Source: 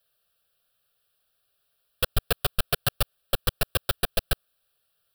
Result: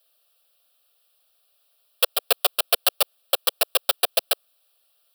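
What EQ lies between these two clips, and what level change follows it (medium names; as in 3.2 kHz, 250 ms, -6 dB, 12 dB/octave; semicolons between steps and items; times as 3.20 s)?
inverse Chebyshev high-pass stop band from 190 Hz, stop band 50 dB; peaking EQ 1.6 kHz -9.5 dB 0.51 oct; +7.5 dB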